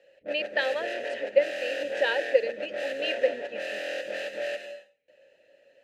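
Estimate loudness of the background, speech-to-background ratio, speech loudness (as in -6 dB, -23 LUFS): -34.0 LUFS, 5.0 dB, -29.0 LUFS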